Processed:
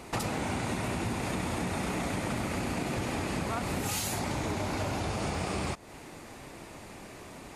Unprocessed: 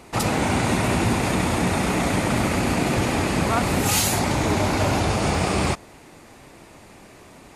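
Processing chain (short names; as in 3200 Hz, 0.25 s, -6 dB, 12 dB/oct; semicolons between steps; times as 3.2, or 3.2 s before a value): compressor 6:1, threshold -30 dBFS, peak gain reduction 13 dB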